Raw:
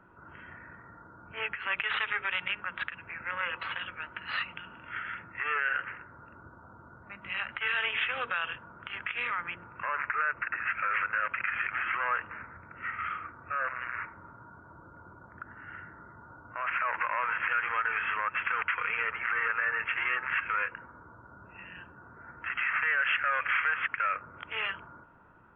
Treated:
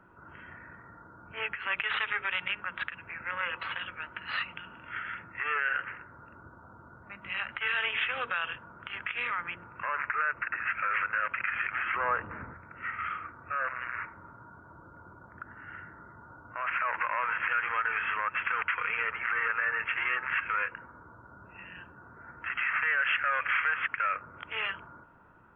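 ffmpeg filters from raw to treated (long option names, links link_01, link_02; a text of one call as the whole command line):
ffmpeg -i in.wav -filter_complex "[0:a]asettb=1/sr,asplit=3[link_01][link_02][link_03];[link_01]atrim=end=11.964[link_04];[link_02]atrim=start=11.96:end=12.54,asetpts=PTS-STARTPTS,afade=type=in:duration=0.004:curve=qsin,afade=type=out:start_time=0.576:duration=0.004:curve=qsin,tiltshelf=frequency=1400:gain=9.5[link_05];[link_03]atrim=start=12.536[link_06];[link_04][link_05]acrossfade=duration=0.004:curve1=hsin:curve2=qsin[link_07];[link_07][link_06]acrossfade=duration=0.004:curve1=qsin:curve2=hsin" out.wav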